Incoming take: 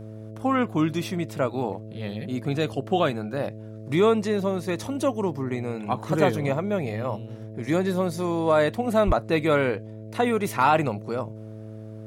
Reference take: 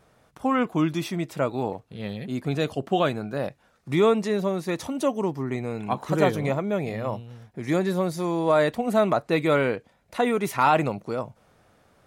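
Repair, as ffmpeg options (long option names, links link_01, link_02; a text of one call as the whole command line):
ffmpeg -i in.wav -filter_complex "[0:a]bandreject=frequency=108.8:width_type=h:width=4,bandreject=frequency=217.6:width_type=h:width=4,bandreject=frequency=326.4:width_type=h:width=4,bandreject=frequency=435.2:width_type=h:width=4,bandreject=frequency=544:width_type=h:width=4,bandreject=frequency=652.8:width_type=h:width=4,asplit=3[link_01][link_02][link_03];[link_01]afade=type=out:start_time=9.06:duration=0.02[link_04];[link_02]highpass=frequency=140:width=0.5412,highpass=frequency=140:width=1.3066,afade=type=in:start_time=9.06:duration=0.02,afade=type=out:start_time=9.18:duration=0.02[link_05];[link_03]afade=type=in:start_time=9.18:duration=0.02[link_06];[link_04][link_05][link_06]amix=inputs=3:normalize=0" out.wav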